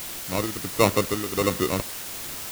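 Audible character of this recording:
aliases and images of a low sample rate 1,600 Hz, jitter 0%
tremolo triangle 1.4 Hz, depth 75%
a quantiser's noise floor 6 bits, dither triangular

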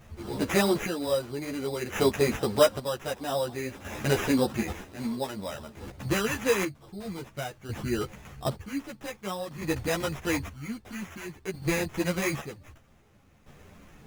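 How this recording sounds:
aliases and images of a low sample rate 4,400 Hz, jitter 0%
chopped level 0.52 Hz, depth 65%, duty 45%
a shimmering, thickened sound

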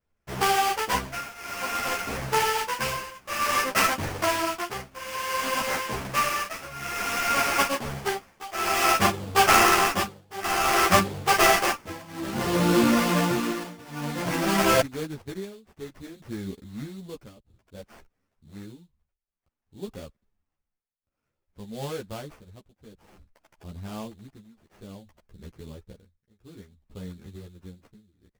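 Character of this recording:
aliases and images of a low sample rate 3,900 Hz, jitter 20%
tremolo triangle 0.56 Hz, depth 95%
a shimmering, thickened sound

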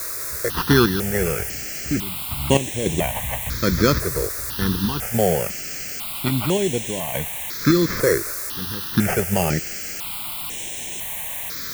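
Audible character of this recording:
aliases and images of a low sample rate 3,800 Hz, jitter 0%
sample-and-hold tremolo, depth 85%
a quantiser's noise floor 6 bits, dither triangular
notches that jump at a steady rate 2 Hz 820–4,700 Hz

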